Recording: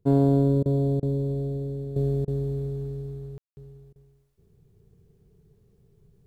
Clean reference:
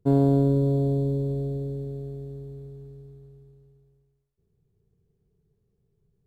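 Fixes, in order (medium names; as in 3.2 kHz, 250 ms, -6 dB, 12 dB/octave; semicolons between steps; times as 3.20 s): room tone fill 3.38–3.57 s; interpolate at 0.63/1.00/2.25/3.93 s, 26 ms; gain correction -11 dB, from 1.96 s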